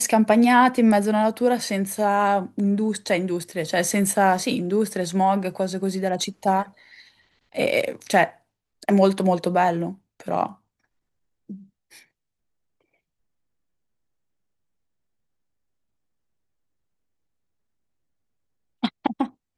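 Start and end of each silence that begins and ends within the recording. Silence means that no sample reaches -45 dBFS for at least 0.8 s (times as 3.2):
10.55–11.49
12.03–18.83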